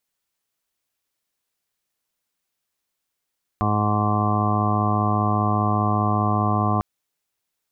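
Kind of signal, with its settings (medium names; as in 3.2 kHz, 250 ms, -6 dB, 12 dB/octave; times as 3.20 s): steady additive tone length 3.20 s, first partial 105 Hz, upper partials -3/-8/-12/-16.5/-11/-4/-13/-17/-4/-5 dB, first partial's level -22 dB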